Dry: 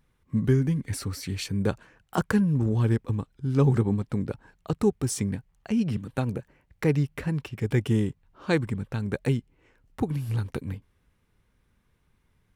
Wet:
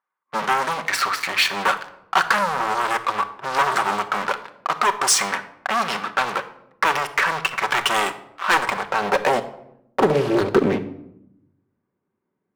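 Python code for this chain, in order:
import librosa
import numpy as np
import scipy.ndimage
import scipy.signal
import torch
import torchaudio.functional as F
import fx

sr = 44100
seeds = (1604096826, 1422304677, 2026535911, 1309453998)

y = fx.env_lowpass(x, sr, base_hz=1200.0, full_db=-19.0)
y = fx.leveller(y, sr, passes=5)
y = fx.filter_sweep_highpass(y, sr, from_hz=1100.0, to_hz=290.0, start_s=8.47, end_s=10.97, q=1.8)
y = 10.0 ** (-15.0 / 20.0) * np.tanh(y / 10.0 ** (-15.0 / 20.0))
y = fx.room_shoebox(y, sr, seeds[0], volume_m3=2100.0, walls='furnished', distance_m=1.1)
y = y * 10.0 ** (5.0 / 20.0)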